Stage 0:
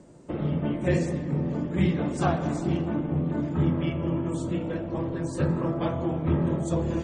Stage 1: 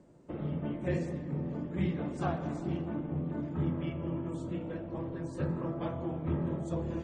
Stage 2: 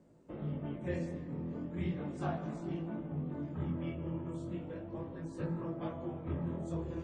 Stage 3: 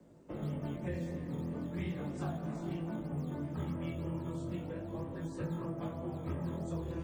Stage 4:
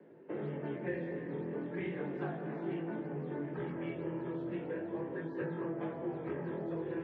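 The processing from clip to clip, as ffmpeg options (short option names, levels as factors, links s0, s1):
-af "highshelf=f=5400:g=-10,volume=0.398"
-af "flanger=delay=18:depth=6.7:speed=0.36,volume=0.841"
-filter_complex "[0:a]acrossover=split=220|470[s0][s1][s2];[s0]acompressor=threshold=0.00891:ratio=4[s3];[s1]acompressor=threshold=0.00316:ratio=4[s4];[s2]acompressor=threshold=0.00355:ratio=4[s5];[s3][s4][s5]amix=inputs=3:normalize=0,acrossover=split=160|1100|3300[s6][s7][s8][s9];[s6]acrusher=samples=9:mix=1:aa=0.000001:lfo=1:lforange=9:lforate=3.1[s10];[s10][s7][s8][s9]amix=inputs=4:normalize=0,volume=1.58"
-filter_complex "[0:a]asplit=2[s0][s1];[s1]asoftclip=type=hard:threshold=0.0106,volume=0.398[s2];[s0][s2]amix=inputs=2:normalize=0,highpass=f=160:w=0.5412,highpass=f=160:w=1.3066,equalizer=f=170:t=q:w=4:g=-5,equalizer=f=240:t=q:w=4:g=-8,equalizer=f=410:t=q:w=4:g=8,equalizer=f=630:t=q:w=4:g=-4,equalizer=f=1200:t=q:w=4:g=-6,equalizer=f=1700:t=q:w=4:g=7,lowpass=f=2700:w=0.5412,lowpass=f=2700:w=1.3066,volume=1.12"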